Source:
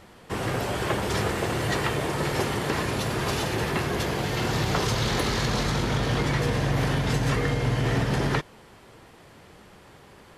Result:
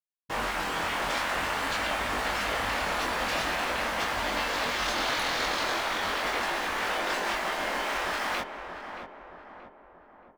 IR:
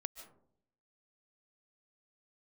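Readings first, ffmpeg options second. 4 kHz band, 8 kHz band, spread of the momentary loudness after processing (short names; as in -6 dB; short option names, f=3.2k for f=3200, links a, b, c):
0.0 dB, -3.0 dB, 11 LU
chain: -filter_complex "[0:a]acrusher=bits=5:mix=0:aa=0.000001,afftfilt=real='re*lt(hypot(re,im),0.1)':imag='im*lt(hypot(re,im),0.1)':win_size=1024:overlap=0.75,lowpass=f=2.3k:p=1,flanger=delay=20:depth=4.6:speed=0.45,asplit=2[a][b];[b]adelay=627,lowpass=f=1.4k:p=1,volume=-7dB,asplit=2[c][d];[d]adelay=627,lowpass=f=1.4k:p=1,volume=0.54,asplit=2[e][f];[f]adelay=627,lowpass=f=1.4k:p=1,volume=0.54,asplit=2[g][h];[h]adelay=627,lowpass=f=1.4k:p=1,volume=0.54,asplit=2[i][j];[j]adelay=627,lowpass=f=1.4k:p=1,volume=0.54,asplit=2[k][l];[l]adelay=627,lowpass=f=1.4k:p=1,volume=0.54,asplit=2[m][n];[n]adelay=627,lowpass=f=1.4k:p=1,volume=0.54[o];[a][c][e][g][i][k][m][o]amix=inputs=8:normalize=0,volume=8dB"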